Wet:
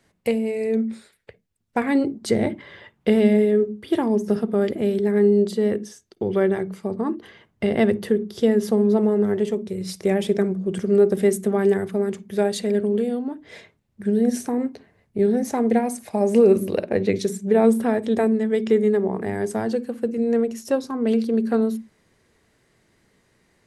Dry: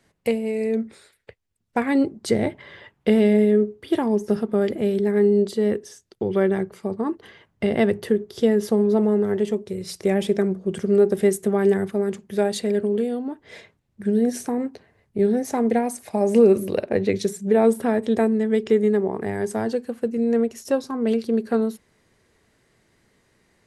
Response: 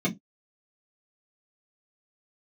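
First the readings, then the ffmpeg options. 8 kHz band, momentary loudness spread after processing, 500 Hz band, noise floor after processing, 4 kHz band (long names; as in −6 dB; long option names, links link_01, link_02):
0.0 dB, 10 LU, 0.0 dB, −67 dBFS, 0.0 dB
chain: -filter_complex "[0:a]asplit=2[link_01][link_02];[1:a]atrim=start_sample=2205,adelay=48[link_03];[link_02][link_03]afir=irnorm=-1:irlink=0,volume=-30.5dB[link_04];[link_01][link_04]amix=inputs=2:normalize=0"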